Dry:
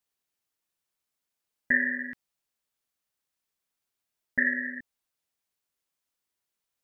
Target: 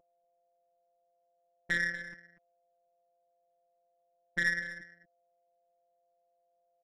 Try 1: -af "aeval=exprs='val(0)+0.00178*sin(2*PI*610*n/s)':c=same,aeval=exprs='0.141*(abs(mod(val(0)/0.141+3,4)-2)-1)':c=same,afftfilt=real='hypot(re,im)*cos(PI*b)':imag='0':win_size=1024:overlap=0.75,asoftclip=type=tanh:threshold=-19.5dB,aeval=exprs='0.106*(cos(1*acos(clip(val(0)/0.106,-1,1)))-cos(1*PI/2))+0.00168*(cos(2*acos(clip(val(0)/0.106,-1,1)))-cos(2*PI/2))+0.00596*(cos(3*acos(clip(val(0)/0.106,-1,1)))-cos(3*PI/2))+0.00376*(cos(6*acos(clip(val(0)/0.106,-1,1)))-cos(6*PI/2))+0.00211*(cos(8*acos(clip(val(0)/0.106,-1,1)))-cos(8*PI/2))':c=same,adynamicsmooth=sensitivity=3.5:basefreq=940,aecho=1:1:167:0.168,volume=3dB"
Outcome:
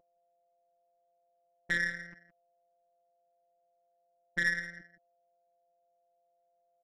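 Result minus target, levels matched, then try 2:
echo 75 ms early
-af "aeval=exprs='val(0)+0.00178*sin(2*PI*610*n/s)':c=same,aeval=exprs='0.141*(abs(mod(val(0)/0.141+3,4)-2)-1)':c=same,afftfilt=real='hypot(re,im)*cos(PI*b)':imag='0':win_size=1024:overlap=0.75,asoftclip=type=tanh:threshold=-19.5dB,aeval=exprs='0.106*(cos(1*acos(clip(val(0)/0.106,-1,1)))-cos(1*PI/2))+0.00168*(cos(2*acos(clip(val(0)/0.106,-1,1)))-cos(2*PI/2))+0.00596*(cos(3*acos(clip(val(0)/0.106,-1,1)))-cos(3*PI/2))+0.00376*(cos(6*acos(clip(val(0)/0.106,-1,1)))-cos(6*PI/2))+0.00211*(cos(8*acos(clip(val(0)/0.106,-1,1)))-cos(8*PI/2))':c=same,adynamicsmooth=sensitivity=3.5:basefreq=940,aecho=1:1:242:0.168,volume=3dB"

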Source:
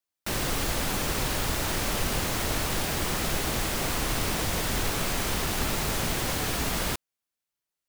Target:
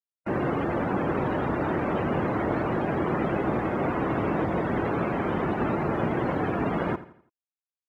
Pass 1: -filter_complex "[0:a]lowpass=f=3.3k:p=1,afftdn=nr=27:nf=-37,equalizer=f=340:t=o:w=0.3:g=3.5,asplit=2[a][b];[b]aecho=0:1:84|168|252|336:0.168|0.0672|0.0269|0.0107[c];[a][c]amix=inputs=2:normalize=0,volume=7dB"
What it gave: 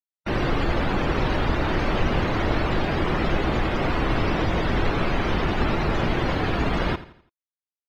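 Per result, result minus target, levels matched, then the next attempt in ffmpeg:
4000 Hz band +13.0 dB; 125 Hz band +2.5 dB
-filter_complex "[0:a]lowpass=f=1.3k:p=1,afftdn=nr=27:nf=-37,equalizer=f=340:t=o:w=0.3:g=3.5,asplit=2[a][b];[b]aecho=0:1:84|168|252|336:0.168|0.0672|0.0269|0.0107[c];[a][c]amix=inputs=2:normalize=0,volume=7dB"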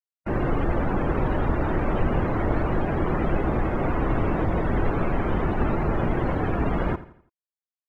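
125 Hz band +3.5 dB
-filter_complex "[0:a]lowpass=f=1.3k:p=1,afftdn=nr=27:nf=-37,highpass=140,equalizer=f=340:t=o:w=0.3:g=3.5,asplit=2[a][b];[b]aecho=0:1:84|168|252|336:0.168|0.0672|0.0269|0.0107[c];[a][c]amix=inputs=2:normalize=0,volume=7dB"

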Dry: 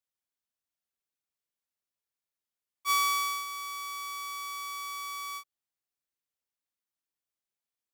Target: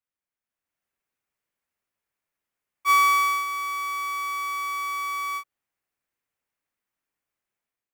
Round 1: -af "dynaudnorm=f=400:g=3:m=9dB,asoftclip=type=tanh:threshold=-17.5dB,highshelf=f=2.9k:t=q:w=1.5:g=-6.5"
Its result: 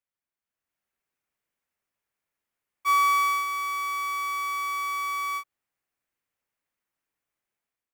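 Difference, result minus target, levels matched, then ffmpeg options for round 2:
soft clip: distortion +14 dB
-af "dynaudnorm=f=400:g=3:m=9dB,asoftclip=type=tanh:threshold=-8.5dB,highshelf=f=2.9k:t=q:w=1.5:g=-6.5"

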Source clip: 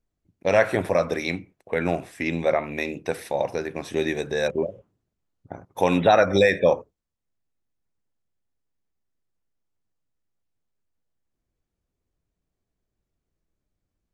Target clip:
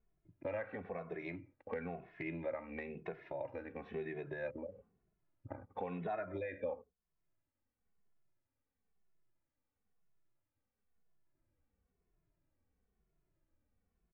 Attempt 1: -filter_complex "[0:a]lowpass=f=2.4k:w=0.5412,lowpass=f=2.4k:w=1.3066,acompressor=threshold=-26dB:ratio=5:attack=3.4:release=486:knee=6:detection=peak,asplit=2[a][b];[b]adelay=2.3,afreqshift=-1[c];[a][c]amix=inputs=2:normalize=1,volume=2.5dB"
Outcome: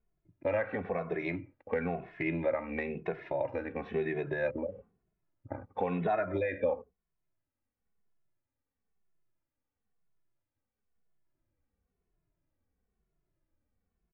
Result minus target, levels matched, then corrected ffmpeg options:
compressor: peak gain reduction -9.5 dB
-filter_complex "[0:a]lowpass=f=2.4k:w=0.5412,lowpass=f=2.4k:w=1.3066,acompressor=threshold=-38dB:ratio=5:attack=3.4:release=486:knee=6:detection=peak,asplit=2[a][b];[b]adelay=2.3,afreqshift=-1[c];[a][c]amix=inputs=2:normalize=1,volume=2.5dB"

